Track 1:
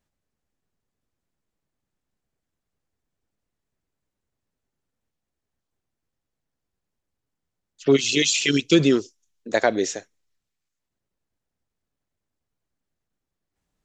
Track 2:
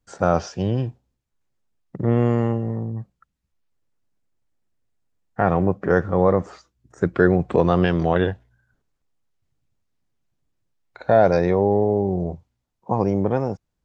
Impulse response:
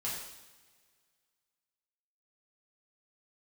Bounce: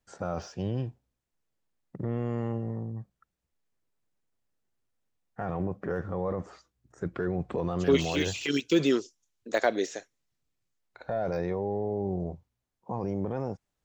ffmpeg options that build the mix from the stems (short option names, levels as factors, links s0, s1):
-filter_complex "[0:a]highpass=f=290:p=1,deesser=0.75,volume=0.668[s0];[1:a]deesser=0.9,alimiter=limit=0.211:level=0:latency=1:release=12,volume=0.398[s1];[s0][s1]amix=inputs=2:normalize=0"